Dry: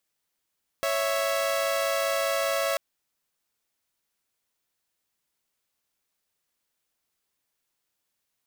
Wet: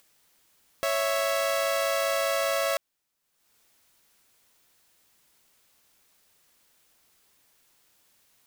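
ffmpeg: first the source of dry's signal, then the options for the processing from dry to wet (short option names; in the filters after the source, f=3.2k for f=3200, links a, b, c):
-f lavfi -i "aevalsrc='0.0596*((2*mod(554.37*t,1)-1)+(2*mod(659.26*t,1)-1))':d=1.94:s=44100"
-af "acompressor=mode=upward:threshold=-51dB:ratio=2.5"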